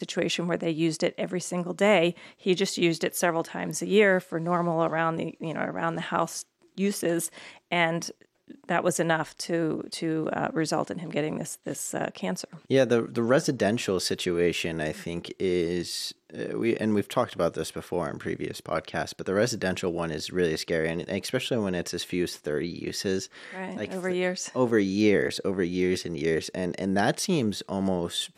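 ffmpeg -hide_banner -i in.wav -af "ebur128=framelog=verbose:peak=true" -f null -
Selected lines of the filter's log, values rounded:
Integrated loudness:
  I:         -27.5 LUFS
  Threshold: -37.6 LUFS
Loudness range:
  LRA:         4.0 LU
  Threshold: -47.7 LUFS
  LRA low:   -29.6 LUFS
  LRA high:  -25.6 LUFS
True peak:
  Peak:       -9.8 dBFS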